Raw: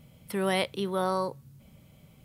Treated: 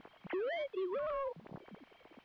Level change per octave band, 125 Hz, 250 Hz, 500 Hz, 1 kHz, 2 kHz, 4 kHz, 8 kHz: -19.0 dB, -12.0 dB, -6.5 dB, -12.0 dB, -10.0 dB, -17.0 dB, under -30 dB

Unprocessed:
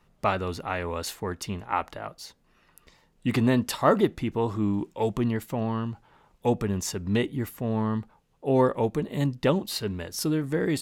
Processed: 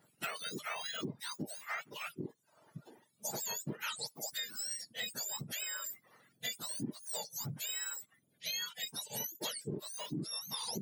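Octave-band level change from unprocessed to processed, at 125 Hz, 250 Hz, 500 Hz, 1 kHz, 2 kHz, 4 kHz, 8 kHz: -19.0 dB, -19.5 dB, -22.0 dB, -17.0 dB, -7.0 dB, -1.0 dB, +0.5 dB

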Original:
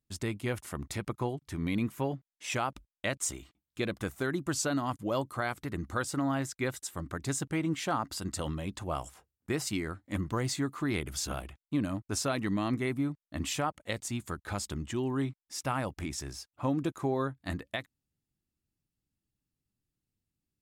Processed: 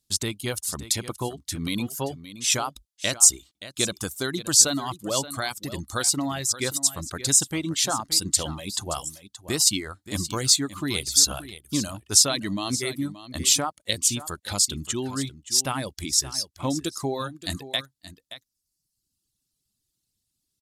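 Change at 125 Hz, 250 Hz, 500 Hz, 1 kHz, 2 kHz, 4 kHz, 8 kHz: +1.5 dB, +2.0 dB, +2.5 dB, +3.0 dB, +4.0 dB, +16.5 dB, +18.5 dB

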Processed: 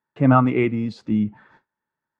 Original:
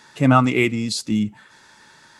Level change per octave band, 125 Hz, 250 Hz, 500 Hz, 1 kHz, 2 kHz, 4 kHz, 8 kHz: 0.0 dB, 0.0 dB, 0.0 dB, -1.0 dB, -6.5 dB, -16.0 dB, under -25 dB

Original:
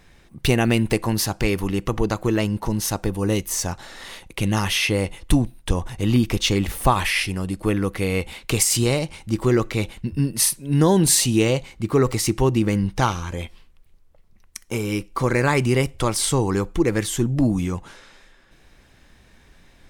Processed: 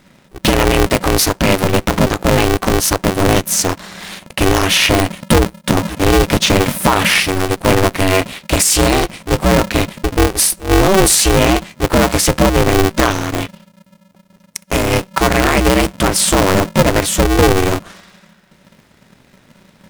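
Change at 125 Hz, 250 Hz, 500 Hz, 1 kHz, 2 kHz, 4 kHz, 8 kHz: +4.5 dB, +6.0 dB, +9.0 dB, +11.0 dB, +10.5 dB, +10.0 dB, +8.0 dB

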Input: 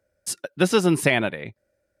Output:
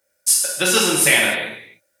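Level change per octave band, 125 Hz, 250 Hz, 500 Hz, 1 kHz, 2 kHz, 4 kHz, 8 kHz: -6.0 dB, -3.0 dB, -0.5 dB, +3.5 dB, +8.0 dB, +11.5 dB, +16.0 dB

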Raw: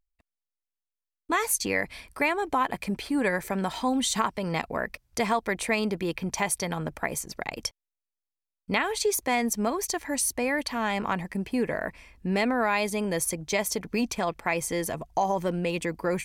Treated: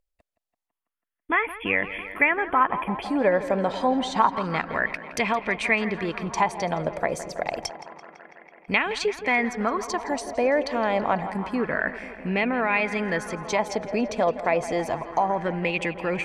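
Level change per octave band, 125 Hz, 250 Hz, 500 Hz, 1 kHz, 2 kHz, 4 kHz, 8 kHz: +0.5 dB, +1.0 dB, +4.0 dB, +4.5 dB, +5.0 dB, -1.5 dB, -10.0 dB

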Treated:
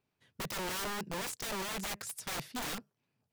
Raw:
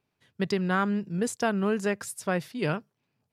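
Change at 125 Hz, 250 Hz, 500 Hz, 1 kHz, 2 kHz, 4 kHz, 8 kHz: -15.0 dB, -16.0 dB, -14.0 dB, -8.0 dB, -8.0 dB, +2.0 dB, -0.5 dB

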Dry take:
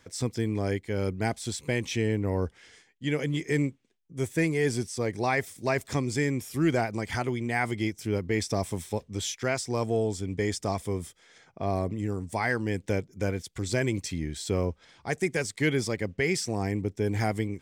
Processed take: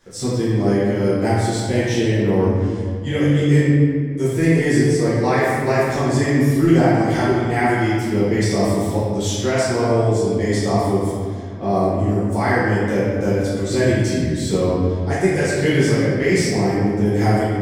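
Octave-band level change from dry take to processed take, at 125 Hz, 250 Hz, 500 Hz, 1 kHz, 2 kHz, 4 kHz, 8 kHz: +12.0 dB, +12.5 dB, +11.5 dB, +11.5 dB, +8.0 dB, +7.5 dB, +6.5 dB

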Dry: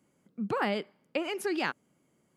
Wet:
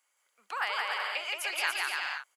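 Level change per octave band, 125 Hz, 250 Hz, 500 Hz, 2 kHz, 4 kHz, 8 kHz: under -40 dB, under -25 dB, -11.5 dB, +6.5 dB, +7.0 dB, +7.5 dB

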